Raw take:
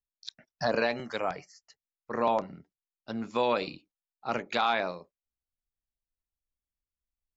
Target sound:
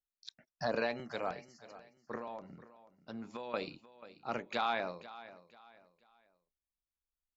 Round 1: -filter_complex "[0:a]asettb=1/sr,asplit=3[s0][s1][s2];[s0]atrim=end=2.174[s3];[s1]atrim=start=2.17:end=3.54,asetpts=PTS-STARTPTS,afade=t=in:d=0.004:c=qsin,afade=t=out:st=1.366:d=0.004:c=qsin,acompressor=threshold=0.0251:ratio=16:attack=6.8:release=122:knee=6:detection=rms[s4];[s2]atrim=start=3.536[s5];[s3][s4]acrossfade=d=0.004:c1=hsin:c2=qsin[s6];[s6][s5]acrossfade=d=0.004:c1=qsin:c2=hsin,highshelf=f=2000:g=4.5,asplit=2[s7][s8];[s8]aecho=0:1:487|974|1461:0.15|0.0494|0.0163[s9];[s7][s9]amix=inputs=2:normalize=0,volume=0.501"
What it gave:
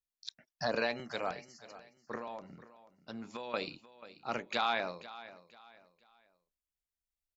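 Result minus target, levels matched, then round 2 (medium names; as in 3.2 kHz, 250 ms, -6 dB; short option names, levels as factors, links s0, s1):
4 kHz band +4.0 dB
-filter_complex "[0:a]asettb=1/sr,asplit=3[s0][s1][s2];[s0]atrim=end=2.174[s3];[s1]atrim=start=2.17:end=3.54,asetpts=PTS-STARTPTS,afade=t=in:d=0.004:c=qsin,afade=t=out:st=1.366:d=0.004:c=qsin,acompressor=threshold=0.0251:ratio=16:attack=6.8:release=122:knee=6:detection=rms[s4];[s2]atrim=start=3.536[s5];[s3][s4]acrossfade=d=0.004:c1=hsin:c2=qsin[s6];[s6][s5]acrossfade=d=0.004:c1=qsin:c2=hsin,highshelf=f=2000:g=-2,asplit=2[s7][s8];[s8]aecho=0:1:487|974|1461:0.15|0.0494|0.0163[s9];[s7][s9]amix=inputs=2:normalize=0,volume=0.501"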